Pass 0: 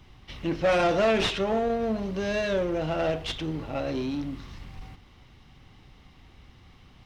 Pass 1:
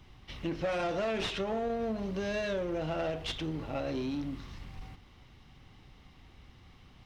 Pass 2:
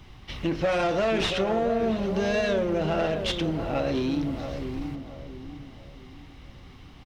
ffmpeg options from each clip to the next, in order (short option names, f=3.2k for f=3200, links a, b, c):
-af "acompressor=threshold=-27dB:ratio=6,volume=-3dB"
-filter_complex "[0:a]asplit=2[a][b];[b]adelay=678,lowpass=f=990:p=1,volume=-7dB,asplit=2[c][d];[d]adelay=678,lowpass=f=990:p=1,volume=0.4,asplit=2[e][f];[f]adelay=678,lowpass=f=990:p=1,volume=0.4,asplit=2[g][h];[h]adelay=678,lowpass=f=990:p=1,volume=0.4,asplit=2[i][j];[j]adelay=678,lowpass=f=990:p=1,volume=0.4[k];[a][c][e][g][i][k]amix=inputs=6:normalize=0,volume=7.5dB"